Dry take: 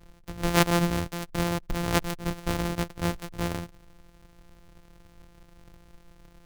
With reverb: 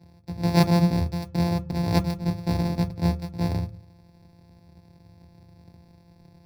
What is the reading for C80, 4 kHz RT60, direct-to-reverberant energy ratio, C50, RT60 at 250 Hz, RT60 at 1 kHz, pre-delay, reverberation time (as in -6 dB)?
25.0 dB, 0.30 s, 9.5 dB, 20.0 dB, 0.40 s, 0.40 s, 3 ms, 0.40 s